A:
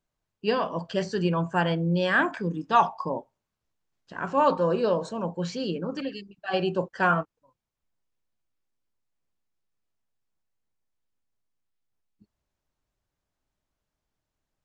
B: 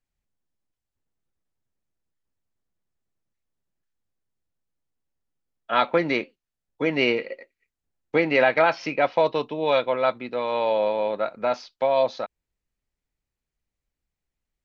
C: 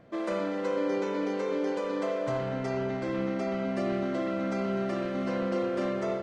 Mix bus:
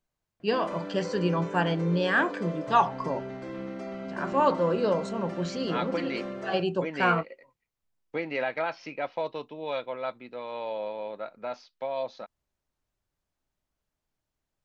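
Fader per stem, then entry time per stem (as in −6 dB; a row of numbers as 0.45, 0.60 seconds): −1.5, −11.0, −6.5 decibels; 0.00, 0.00, 0.40 seconds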